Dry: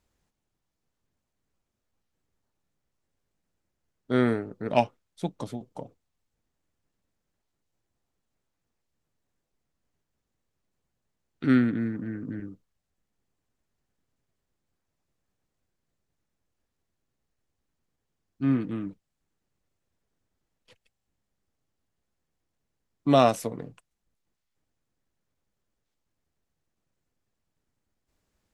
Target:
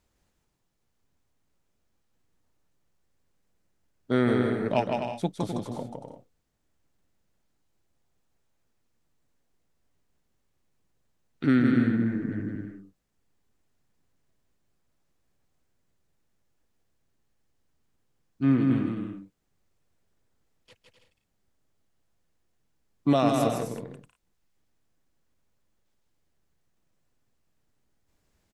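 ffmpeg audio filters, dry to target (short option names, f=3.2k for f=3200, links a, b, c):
-af "alimiter=limit=-14.5dB:level=0:latency=1:release=299,aecho=1:1:160|256|313.6|348.2|368.9:0.631|0.398|0.251|0.158|0.1,volume=2dB"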